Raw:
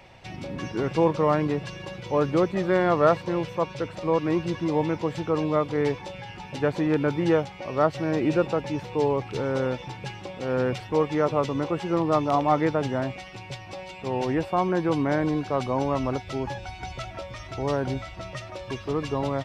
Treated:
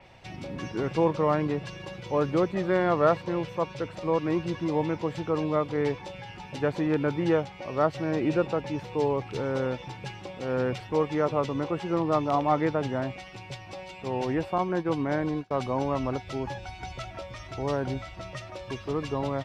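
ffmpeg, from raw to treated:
-filter_complex "[0:a]asettb=1/sr,asplit=3[a][b][c];[a]atrim=end=14.584[d];[b]atrim=start=14.58:end=15.51,asetpts=PTS-STARTPTS,afade=t=in:d=0.004:c=qsin,afade=t=out:st=0.926:d=0.004:c=qsin,agate=range=-33dB:threshold=-23dB:ratio=3:release=100:detection=peak[e];[c]atrim=start=15.506[f];[d][e]acrossfade=d=0.004:c1=hsin:c2=qsin[g];[g][f]acrossfade=d=0.004:c1=qsin:c2=hsin,adynamicequalizer=threshold=0.00631:dfrequency=5200:dqfactor=0.7:tfrequency=5200:tqfactor=0.7:attack=5:release=100:ratio=0.375:range=2:mode=cutabove:tftype=highshelf,volume=-2.5dB"

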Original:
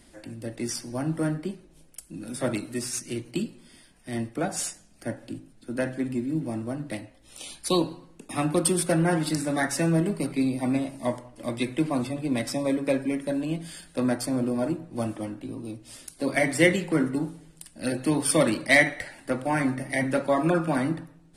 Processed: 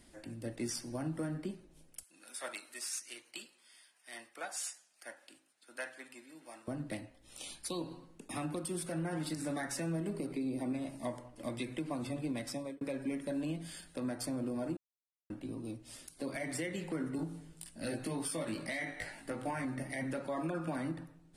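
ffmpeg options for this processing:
-filter_complex "[0:a]asettb=1/sr,asplit=3[a][b][c];[a]atrim=end=2.034[d];[b]atrim=start=2.03:end=6.68,asetpts=PTS-STARTPTS,afade=t=in:d=0.004:c=qsin,afade=t=out:st=4.646:d=0.004:c=qsin,highpass=1k[e];[c]atrim=start=6.676[f];[d][e]acrossfade=d=0.004:c1=hsin:c2=qsin[g];[g][f]acrossfade=d=0.004:c1=qsin:c2=hsin,asettb=1/sr,asplit=3[h][i][j];[h]atrim=end=10.144[k];[i]atrim=start=10.14:end=10.73,asetpts=PTS-STARTPTS,afade=t=in:d=0.004:c=qsin,afade=t=out:st=0.586:d=0.004:c=qsin,equalizer=f=380:w=1.2:g=8.5[l];[j]atrim=start=10.726[m];[k][l]acrossfade=d=0.004:c1=hsin:c2=qsin[n];[n][m]acrossfade=d=0.004:c1=qsin:c2=hsin,asettb=1/sr,asplit=3[o][p][q];[o]atrim=end=17.174[r];[p]atrim=start=17.17:end=19.65,asetpts=PTS-STARTPTS,afade=t=in:d=0.004:c=qsin,afade=t=out:st=2.476:d=0.004:c=qsin,asplit=2[s][t];[t]adelay=18,volume=-2dB[u];[s][u]amix=inputs=2:normalize=0,atrim=end_sample=109368[v];[q]atrim=start=19.646[w];[r][v]acrossfade=d=0.004:c1=hsin:c2=qsin[x];[x][w]acrossfade=d=0.004:c1=qsin:c2=hsin,asplit=4[y][z][aa][ab];[y]atrim=end=12.81,asetpts=PTS-STARTPTS,afade=t=out:st=12.36:d=0.45[ac];[z]atrim=start=12.81:end=14.77,asetpts=PTS-STARTPTS,afade=t=in:d=0.004:c=hsin,afade=t=out:st=1.956:d=0.004:c=hsin[ad];[aa]atrim=start=14.77:end=15.3,asetpts=PTS-STARTPTS,volume=0[ae];[ab]atrim=start=15.3,asetpts=PTS-STARTPTS,afade=t=in:d=0.004:c=hsin[af];[ac][ad][ae][af]concat=n=4:v=0:a=1,acompressor=threshold=-25dB:ratio=6,alimiter=limit=-22.5dB:level=0:latency=1:release=105,volume=-6dB"

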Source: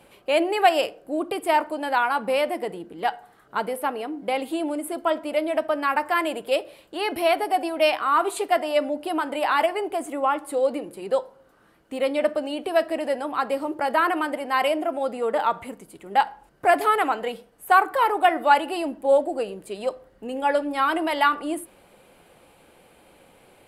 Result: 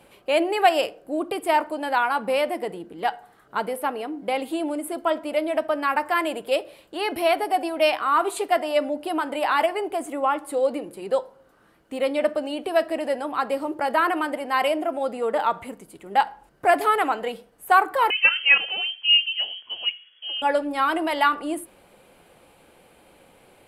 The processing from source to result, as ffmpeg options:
-filter_complex "[0:a]asettb=1/sr,asplit=3[a][b][c];[a]atrim=end=18.104[d];[b]atrim=start=18.1:end=20.42,asetpts=PTS-STARTPTS,afade=t=in:d=0.004:c=qsin,afade=t=out:st=2.316:d=0.004:c=qsin,lowpass=f=2.9k:t=q:w=0.5098,lowpass=f=2.9k:t=q:w=0.6013,lowpass=f=2.9k:t=q:w=0.9,lowpass=f=2.9k:t=q:w=2.563,afreqshift=-3400[e];[c]atrim=start=20.416[f];[d][e]acrossfade=d=0.004:c1=hsin:c2=qsin[g];[g][f]acrossfade=d=0.004:c1=qsin:c2=hsin"

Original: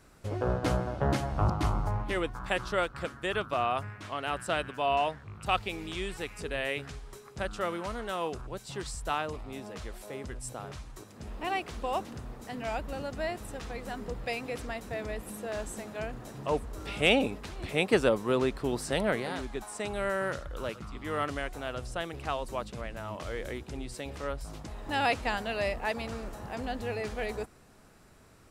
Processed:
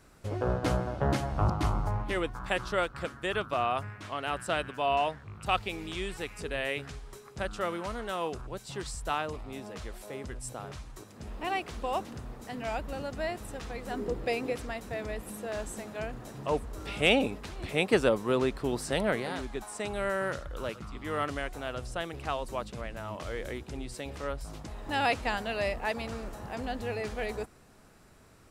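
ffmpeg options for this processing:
-filter_complex "[0:a]asettb=1/sr,asplit=3[a][b][c];[a]atrim=end=13.904[d];[b]atrim=start=13.9:end=14.53,asetpts=PTS-STARTPTS,afade=t=in:d=0.004:c=qsin,afade=t=out:st=0.626:d=0.004:c=qsin,equalizer=f=360:w=1.5:g=11[e];[c]atrim=start=14.526[f];[d][e]acrossfade=d=0.004:c1=hsin:c2=qsin[g];[g][f]acrossfade=d=0.004:c1=qsin:c2=hsin"

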